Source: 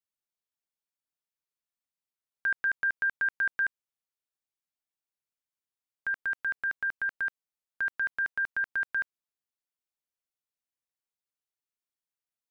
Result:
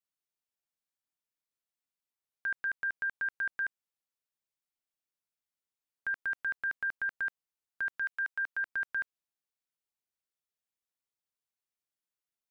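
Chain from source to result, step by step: 7.99–8.63 s: high-pass 1.4 kHz -> 360 Hz 12 dB/octave; peak limiter -26 dBFS, peak gain reduction 3.5 dB; trim -2 dB

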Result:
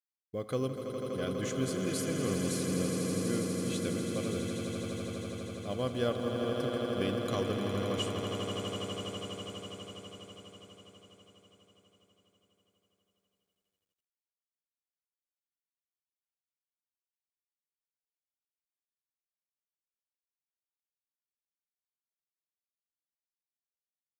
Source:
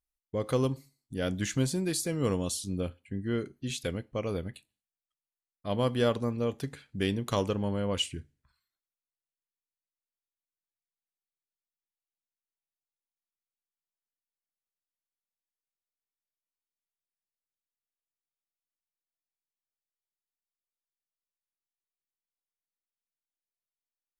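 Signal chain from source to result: comb of notches 910 Hz; echo with a slow build-up 82 ms, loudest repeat 8, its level -8.5 dB; companded quantiser 8-bit; trim -5 dB

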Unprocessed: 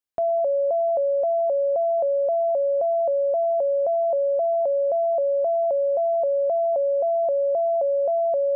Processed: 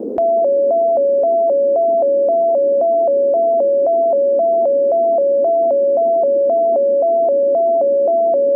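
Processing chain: band noise 230–500 Hz -40 dBFS; level flattener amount 50%; trim +7.5 dB

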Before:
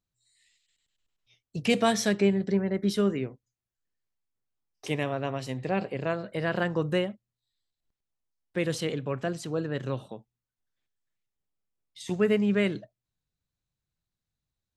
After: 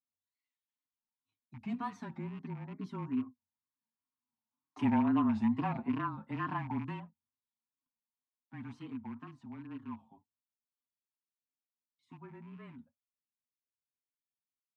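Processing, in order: rattle on loud lows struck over -31 dBFS, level -25 dBFS; Doppler pass-by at 5.19 s, 5 m/s, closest 3.3 m; two resonant band-passes 510 Hz, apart 1.9 oct; in parallel at -1.5 dB: peak limiter -39 dBFS, peak gain reduction 8 dB; on the sum: comb 6.8 ms, depth 79%; frequency shift -25 Hz; wow and flutter 150 cents; trim +5.5 dB

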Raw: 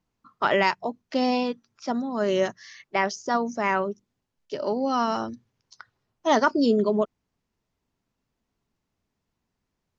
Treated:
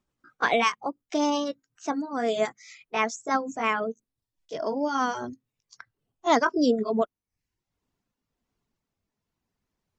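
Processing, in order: pitch bend over the whole clip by +3 st ending unshifted; reverb removal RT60 0.55 s

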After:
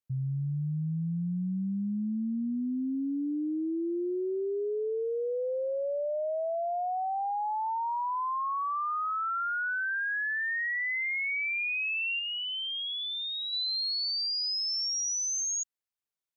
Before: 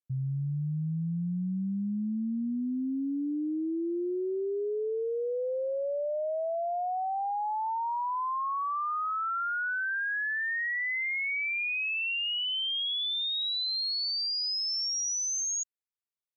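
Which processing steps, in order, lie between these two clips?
2.33–2.95 s: low-pass 3.1 kHz; 12.19–13.53 s: treble shelf 2.2 kHz -5 dB

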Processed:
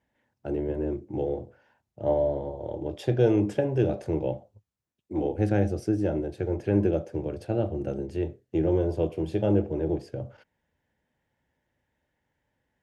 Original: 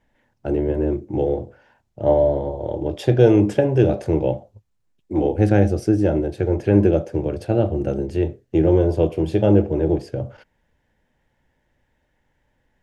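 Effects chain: high-pass 64 Hz; trim -8 dB

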